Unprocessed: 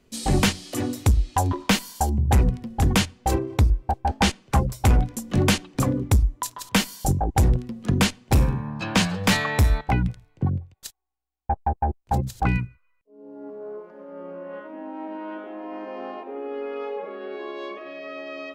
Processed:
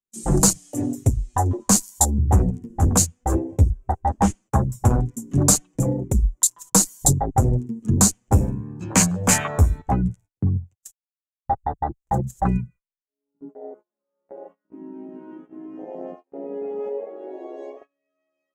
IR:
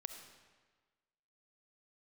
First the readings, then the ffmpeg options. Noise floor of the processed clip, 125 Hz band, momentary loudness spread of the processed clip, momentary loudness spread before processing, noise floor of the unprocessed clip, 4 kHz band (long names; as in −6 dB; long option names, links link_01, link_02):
below −85 dBFS, +1.5 dB, 20 LU, 16 LU, −64 dBFS, −4.5 dB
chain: -af "highshelf=frequency=5500:width_type=q:width=3:gain=9,afwtdn=0.0631,agate=range=-28dB:threshold=-44dB:ratio=16:detection=peak,flanger=delay=5.1:depth=7.3:regen=6:speed=0.16:shape=triangular,volume=5dB"